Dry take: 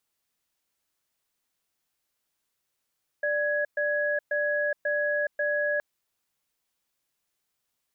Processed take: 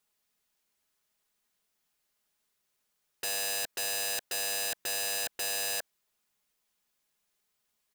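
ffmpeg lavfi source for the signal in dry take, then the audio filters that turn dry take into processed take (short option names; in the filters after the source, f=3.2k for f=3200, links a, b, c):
-f lavfi -i "aevalsrc='0.0473*(sin(2*PI*590*t)+sin(2*PI*1670*t))*clip(min(mod(t,0.54),0.42-mod(t,0.54))/0.005,0,1)':d=2.57:s=44100"
-af "aecho=1:1:4.8:0.45,aeval=exprs='(mod(23.7*val(0)+1,2)-1)/23.7':c=same"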